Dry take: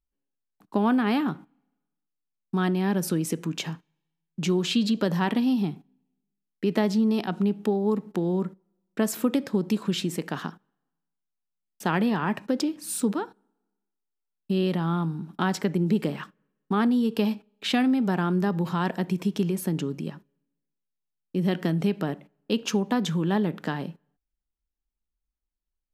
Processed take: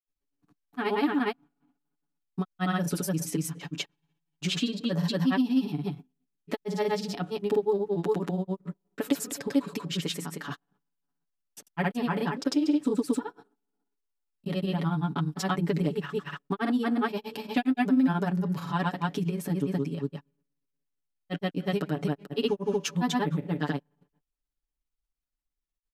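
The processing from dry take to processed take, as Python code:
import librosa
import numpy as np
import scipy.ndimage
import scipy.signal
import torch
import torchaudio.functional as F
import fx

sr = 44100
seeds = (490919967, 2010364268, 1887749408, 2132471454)

y = x + 0.88 * np.pad(x, (int(7.0 * sr / 1000.0), 0))[:len(x)]
y = fx.granulator(y, sr, seeds[0], grain_ms=100.0, per_s=17.0, spray_ms=241.0, spread_st=0)
y = y * 10.0 ** (-2.5 / 20.0)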